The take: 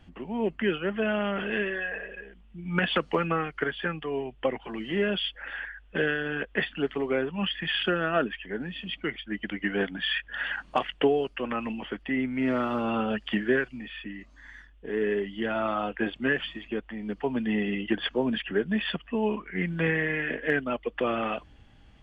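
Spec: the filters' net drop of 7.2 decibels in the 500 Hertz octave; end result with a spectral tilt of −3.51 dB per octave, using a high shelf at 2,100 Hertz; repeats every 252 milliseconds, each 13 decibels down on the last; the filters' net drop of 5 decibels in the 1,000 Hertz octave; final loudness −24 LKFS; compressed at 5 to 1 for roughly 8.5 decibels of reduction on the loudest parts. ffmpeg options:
ffmpeg -i in.wav -af "equalizer=frequency=500:width_type=o:gain=-8.5,equalizer=frequency=1000:width_type=o:gain=-3,highshelf=frequency=2100:gain=-5,acompressor=threshold=-33dB:ratio=5,aecho=1:1:252|504|756:0.224|0.0493|0.0108,volume=13.5dB" out.wav

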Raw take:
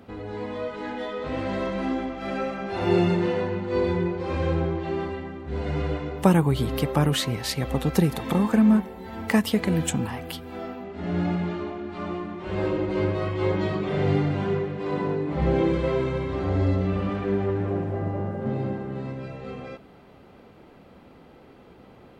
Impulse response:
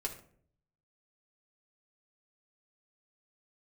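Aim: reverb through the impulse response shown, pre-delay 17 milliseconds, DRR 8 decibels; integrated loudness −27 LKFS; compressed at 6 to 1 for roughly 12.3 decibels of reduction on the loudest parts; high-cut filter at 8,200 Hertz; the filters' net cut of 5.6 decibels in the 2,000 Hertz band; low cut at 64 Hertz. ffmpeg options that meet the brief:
-filter_complex "[0:a]highpass=64,lowpass=8200,equalizer=frequency=2000:width_type=o:gain=-7,acompressor=threshold=-28dB:ratio=6,asplit=2[link_01][link_02];[1:a]atrim=start_sample=2205,adelay=17[link_03];[link_02][link_03]afir=irnorm=-1:irlink=0,volume=-9dB[link_04];[link_01][link_04]amix=inputs=2:normalize=0,volume=5.5dB"

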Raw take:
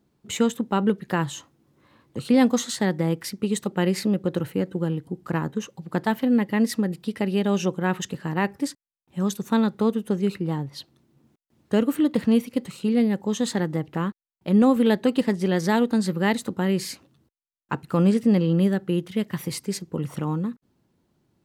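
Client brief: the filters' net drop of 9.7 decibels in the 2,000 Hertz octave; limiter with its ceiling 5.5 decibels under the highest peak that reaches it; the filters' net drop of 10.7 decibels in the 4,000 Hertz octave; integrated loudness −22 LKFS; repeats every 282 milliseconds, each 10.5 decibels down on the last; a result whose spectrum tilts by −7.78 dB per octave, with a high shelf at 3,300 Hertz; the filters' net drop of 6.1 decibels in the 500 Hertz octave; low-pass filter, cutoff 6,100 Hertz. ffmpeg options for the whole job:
ffmpeg -i in.wav -af "lowpass=6100,equalizer=frequency=500:width_type=o:gain=-7,equalizer=frequency=2000:width_type=o:gain=-9,highshelf=frequency=3300:gain=-4,equalizer=frequency=4000:width_type=o:gain=-7,alimiter=limit=-17dB:level=0:latency=1,aecho=1:1:282|564|846:0.299|0.0896|0.0269,volume=5.5dB" out.wav

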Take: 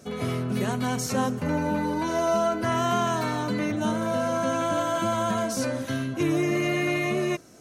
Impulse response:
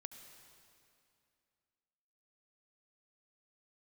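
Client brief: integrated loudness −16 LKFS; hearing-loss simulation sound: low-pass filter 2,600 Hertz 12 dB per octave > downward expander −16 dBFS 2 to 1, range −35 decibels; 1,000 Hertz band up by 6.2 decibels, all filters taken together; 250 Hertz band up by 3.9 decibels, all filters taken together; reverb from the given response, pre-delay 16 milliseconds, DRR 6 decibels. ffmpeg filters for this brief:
-filter_complex "[0:a]equalizer=frequency=250:width_type=o:gain=4.5,equalizer=frequency=1000:width_type=o:gain=7.5,asplit=2[link_01][link_02];[1:a]atrim=start_sample=2205,adelay=16[link_03];[link_02][link_03]afir=irnorm=-1:irlink=0,volume=-1dB[link_04];[link_01][link_04]amix=inputs=2:normalize=0,lowpass=2600,agate=range=-35dB:threshold=-16dB:ratio=2,volume=7.5dB"

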